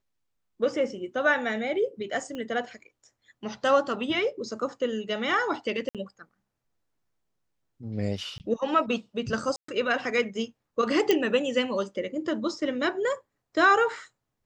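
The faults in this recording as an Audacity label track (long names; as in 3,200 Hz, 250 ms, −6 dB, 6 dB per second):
2.350000	2.350000	click −24 dBFS
5.890000	5.950000	drop-out 57 ms
8.380000	8.400000	drop-out 19 ms
9.560000	9.680000	drop-out 124 ms
11.110000	11.110000	click −9 dBFS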